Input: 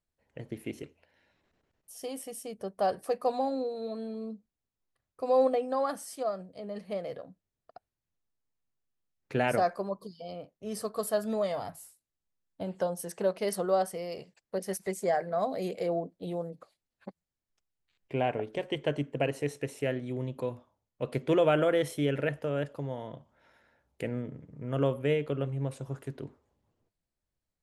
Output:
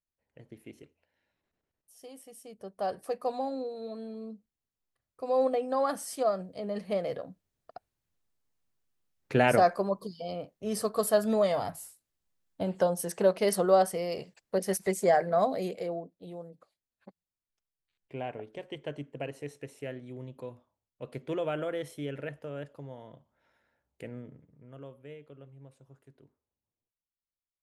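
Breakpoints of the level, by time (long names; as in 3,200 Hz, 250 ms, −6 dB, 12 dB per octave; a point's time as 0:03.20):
0:02.23 −10 dB
0:02.98 −3 dB
0:05.29 −3 dB
0:06.15 +4.5 dB
0:15.40 +4.5 dB
0:16.12 −8 dB
0:24.34 −8 dB
0:24.82 −19 dB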